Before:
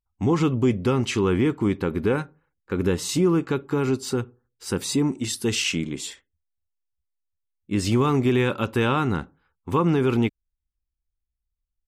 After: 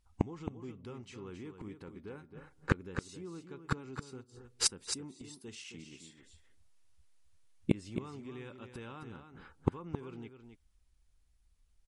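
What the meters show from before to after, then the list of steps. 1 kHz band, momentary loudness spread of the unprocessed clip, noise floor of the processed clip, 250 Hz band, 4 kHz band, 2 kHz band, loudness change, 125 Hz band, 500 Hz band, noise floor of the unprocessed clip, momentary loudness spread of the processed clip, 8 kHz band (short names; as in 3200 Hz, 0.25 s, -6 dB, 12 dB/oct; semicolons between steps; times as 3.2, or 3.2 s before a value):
-18.0 dB, 9 LU, -69 dBFS, -18.0 dB, -11.5 dB, -14.5 dB, -16.5 dB, -16.0 dB, -20.5 dB, -82 dBFS, 17 LU, -8.0 dB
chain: in parallel at -1 dB: vocal rider 0.5 s; on the sum: flipped gate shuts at -20 dBFS, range -38 dB; echo 0.268 s -8.5 dB; gain +8 dB; MP3 48 kbps 48000 Hz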